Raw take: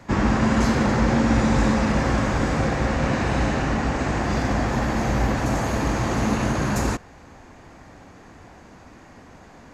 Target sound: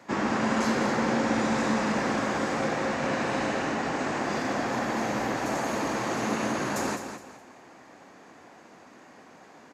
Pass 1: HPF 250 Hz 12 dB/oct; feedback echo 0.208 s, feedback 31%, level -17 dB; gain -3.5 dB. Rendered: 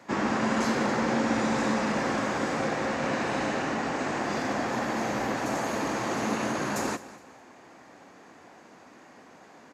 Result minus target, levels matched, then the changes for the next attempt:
echo-to-direct -8.5 dB
change: feedback echo 0.208 s, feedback 31%, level -8.5 dB

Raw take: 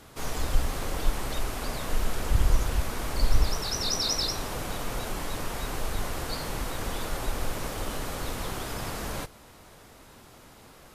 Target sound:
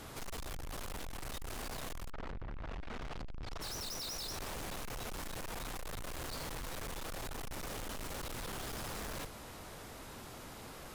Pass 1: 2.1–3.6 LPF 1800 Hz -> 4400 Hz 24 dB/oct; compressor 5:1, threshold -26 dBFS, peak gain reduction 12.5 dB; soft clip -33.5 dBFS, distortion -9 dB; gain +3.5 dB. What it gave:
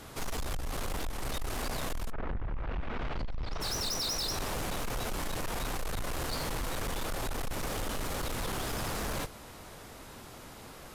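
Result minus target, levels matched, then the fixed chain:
soft clip: distortion -5 dB
2.1–3.6 LPF 1800 Hz -> 4400 Hz 24 dB/oct; compressor 5:1, threshold -26 dBFS, peak gain reduction 12.5 dB; soft clip -44 dBFS, distortion -4 dB; gain +3.5 dB

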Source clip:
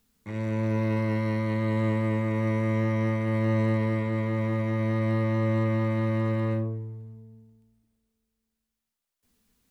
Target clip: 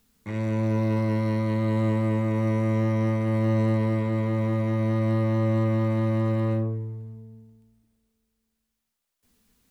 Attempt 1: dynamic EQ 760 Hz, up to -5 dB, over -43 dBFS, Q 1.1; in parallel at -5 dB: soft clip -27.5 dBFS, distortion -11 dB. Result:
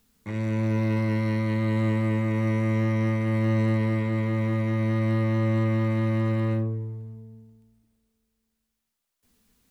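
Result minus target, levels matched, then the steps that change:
2000 Hz band +4.0 dB
change: dynamic EQ 2100 Hz, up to -5 dB, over -43 dBFS, Q 1.1

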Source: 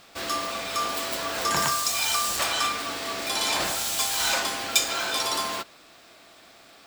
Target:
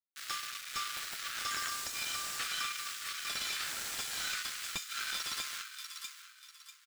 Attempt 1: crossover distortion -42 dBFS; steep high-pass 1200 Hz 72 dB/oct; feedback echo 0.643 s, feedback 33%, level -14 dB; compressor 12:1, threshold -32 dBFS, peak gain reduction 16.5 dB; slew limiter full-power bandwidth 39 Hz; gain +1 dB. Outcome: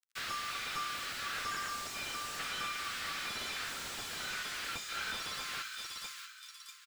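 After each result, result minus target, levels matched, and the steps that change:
crossover distortion: distortion -12 dB; slew limiter: distortion +6 dB
change: crossover distortion -30 dBFS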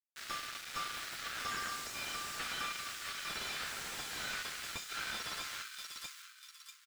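slew limiter: distortion +6 dB
change: slew limiter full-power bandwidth 98 Hz

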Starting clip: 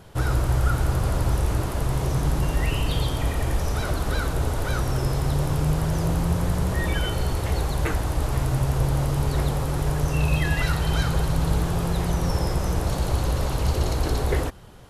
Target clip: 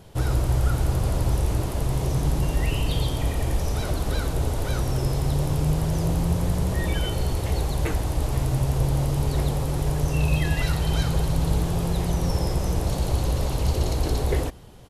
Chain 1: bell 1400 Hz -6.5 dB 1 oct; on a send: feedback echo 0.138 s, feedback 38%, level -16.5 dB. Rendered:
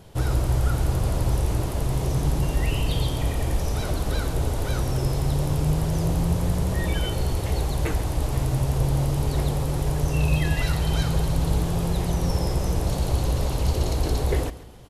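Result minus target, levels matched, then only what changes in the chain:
echo-to-direct +11 dB
change: feedback echo 0.138 s, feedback 38%, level -27.5 dB

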